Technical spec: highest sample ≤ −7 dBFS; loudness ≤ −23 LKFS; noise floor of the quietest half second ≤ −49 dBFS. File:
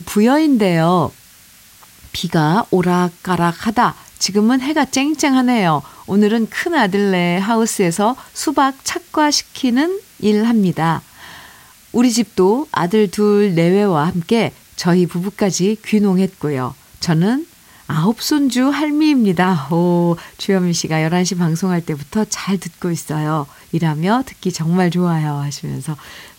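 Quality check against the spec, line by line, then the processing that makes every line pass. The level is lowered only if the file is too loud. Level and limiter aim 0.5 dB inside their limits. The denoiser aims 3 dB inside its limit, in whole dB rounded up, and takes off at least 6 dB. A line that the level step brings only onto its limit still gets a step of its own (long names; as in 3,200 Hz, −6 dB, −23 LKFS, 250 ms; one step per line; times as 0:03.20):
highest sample −3.5 dBFS: out of spec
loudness −16.5 LKFS: out of spec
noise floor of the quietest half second −45 dBFS: out of spec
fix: level −7 dB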